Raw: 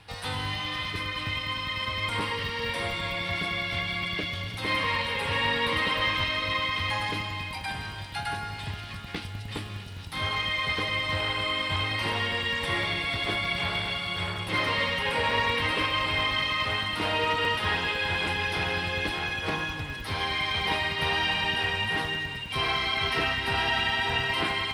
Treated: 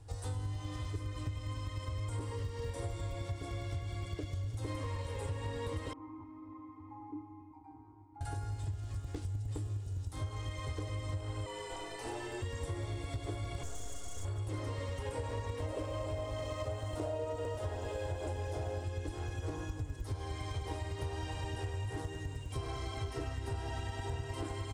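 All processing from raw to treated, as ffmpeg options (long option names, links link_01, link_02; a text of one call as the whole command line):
ffmpeg -i in.wav -filter_complex "[0:a]asettb=1/sr,asplit=3[link_01][link_02][link_03];[link_01]atrim=end=5.934[link_04];[link_02]atrim=start=5.93:end=8.21,asetpts=PTS-STARTPTS,afade=type=in:duration=0.004:curve=qsin,afade=type=out:start_time=2.276:duration=0.004:curve=qsin,asplit=3[link_05][link_06][link_07];[link_05]bandpass=frequency=300:width_type=q:width=8,volume=0dB[link_08];[link_06]bandpass=frequency=870:width_type=q:width=8,volume=-6dB[link_09];[link_07]bandpass=frequency=2240:width_type=q:width=8,volume=-9dB[link_10];[link_08][link_09][link_10]amix=inputs=3:normalize=0,highshelf=frequency=2000:width_type=q:width=3:gain=-13.5[link_11];[link_03]atrim=start=8.206[link_12];[link_04][link_11]acrossfade=duration=0.004:curve1=hsin:curve2=qsin[link_13];[link_13][link_12]acrossfade=duration=0.004:curve1=qsin:curve2=hsin,asettb=1/sr,asplit=3[link_14][link_15][link_16];[link_14]atrim=end=11.464[link_17];[link_15]atrim=start=11.46:end=12.42,asetpts=PTS-STARTPTS,afade=type=in:duration=0.004:curve=qsin,afade=type=out:start_time=0.956:duration=0.004:curve=qsin,highpass=420,afreqshift=-110[link_18];[link_16]atrim=start=12.416[link_19];[link_17][link_18]acrossfade=duration=0.004:curve1=hsin:curve2=qsin[link_20];[link_20][link_19]acrossfade=duration=0.004:curve1=qsin:curve2=hsin,asettb=1/sr,asplit=3[link_21][link_22][link_23];[link_21]atrim=end=13.634[link_24];[link_22]atrim=start=13.63:end=14.25,asetpts=PTS-STARTPTS,afade=type=in:duration=0.004:curve=qsin,afade=type=out:start_time=0.616:duration=0.004:curve=qsin,aecho=1:1:4.2:0.89,atrim=end_sample=27342,aeval=exprs='(tanh(50.1*val(0)+0.75)-tanh(0.75))/50.1':channel_layout=same[link_25];[link_23]atrim=start=14.246[link_26];[link_24][link_25]acrossfade=duration=0.004:curve1=hsin:curve2=qsin[link_27];[link_27][link_26]acrossfade=duration=0.004:curve1=qsin:curve2=hsin,asettb=1/sr,asplit=3[link_28][link_29][link_30];[link_28]atrim=end=15.594[link_31];[link_29]atrim=start=15.59:end=18.84,asetpts=PTS-STARTPTS,afade=type=in:duration=0.004:curve=qsin,afade=type=out:start_time=3.246:duration=0.004:curve=qsin,equalizer=frequency=610:width_type=o:width=0.55:gain=14,aeval=exprs='sgn(val(0))*max(abs(val(0))-0.00266,0)':channel_layout=same[link_32];[link_30]atrim=start=18.836[link_33];[link_31][link_32]acrossfade=duration=0.004:curve1=hsin:curve2=qsin[link_34];[link_34][link_33]acrossfade=duration=0.004:curve1=qsin:curve2=hsin,firequalizer=gain_entry='entry(110,0);entry(190,-26);entry(280,-6);entry(880,-17);entry(2300,-28);entry(4300,-22);entry(7100,-2);entry(11000,-16)':delay=0.05:min_phase=1,acompressor=threshold=-40dB:ratio=6,volume=5.5dB" out.wav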